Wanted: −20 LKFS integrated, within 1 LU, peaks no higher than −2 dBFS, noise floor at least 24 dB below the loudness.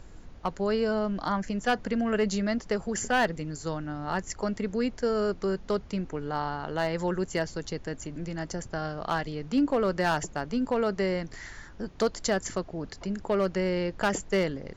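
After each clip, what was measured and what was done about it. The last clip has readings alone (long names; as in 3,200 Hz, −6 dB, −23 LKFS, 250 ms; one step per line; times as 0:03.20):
share of clipped samples 0.4%; peaks flattened at −18.0 dBFS; background noise floor −47 dBFS; target noise floor −54 dBFS; integrated loudness −29.5 LKFS; sample peak −18.0 dBFS; target loudness −20.0 LKFS
→ clipped peaks rebuilt −18 dBFS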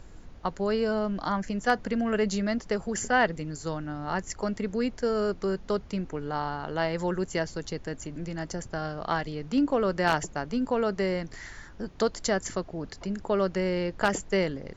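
share of clipped samples 0.0%; background noise floor −47 dBFS; target noise floor −54 dBFS
→ noise reduction from a noise print 7 dB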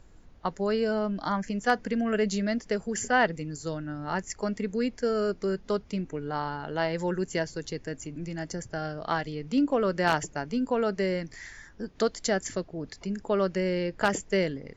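background noise floor −53 dBFS; target noise floor −54 dBFS
→ noise reduction from a noise print 6 dB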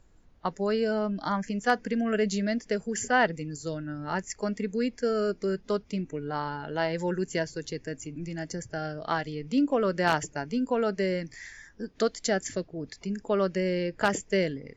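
background noise floor −57 dBFS; integrated loudness −29.5 LKFS; sample peak −9.0 dBFS; target loudness −20.0 LKFS
→ level +9.5 dB
brickwall limiter −2 dBFS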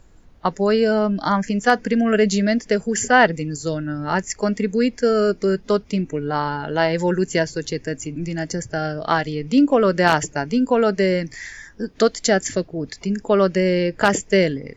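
integrated loudness −20.0 LKFS; sample peak −2.0 dBFS; background noise floor −48 dBFS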